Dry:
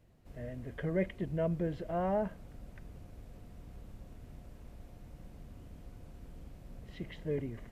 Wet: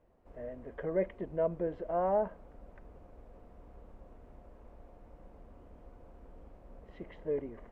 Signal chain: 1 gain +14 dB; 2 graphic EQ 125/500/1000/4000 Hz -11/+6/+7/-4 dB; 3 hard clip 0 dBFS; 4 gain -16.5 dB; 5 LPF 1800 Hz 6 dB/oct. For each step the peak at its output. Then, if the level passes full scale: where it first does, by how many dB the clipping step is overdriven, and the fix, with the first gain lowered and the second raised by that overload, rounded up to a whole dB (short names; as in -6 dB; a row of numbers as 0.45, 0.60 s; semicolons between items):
-8.0, -3.0, -3.0, -19.5, -20.0 dBFS; no overload